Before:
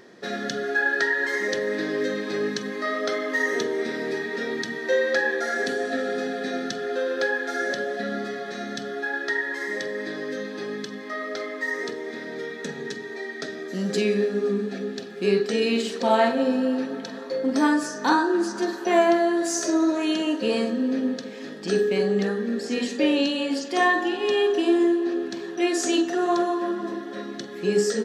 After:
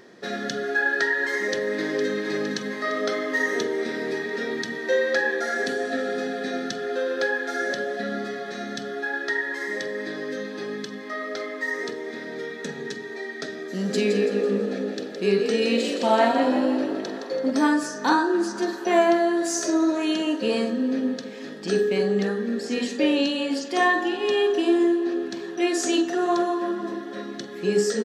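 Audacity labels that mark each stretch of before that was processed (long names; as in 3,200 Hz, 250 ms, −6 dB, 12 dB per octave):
1.320000	2.220000	delay throw 460 ms, feedback 70%, level −8.5 dB
13.630000	17.510000	echo with shifted repeats 166 ms, feedback 43%, per repeat +56 Hz, level −7 dB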